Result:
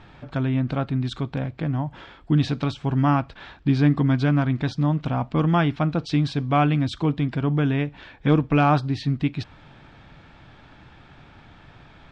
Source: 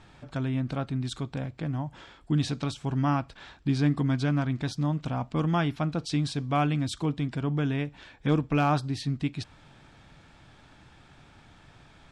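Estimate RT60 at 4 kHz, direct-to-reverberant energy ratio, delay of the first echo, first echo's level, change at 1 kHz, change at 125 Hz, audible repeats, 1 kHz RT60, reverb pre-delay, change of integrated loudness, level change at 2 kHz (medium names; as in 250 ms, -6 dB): no reverb, no reverb, no echo, no echo, +6.0 dB, +6.0 dB, no echo, no reverb, no reverb, +6.0 dB, +5.5 dB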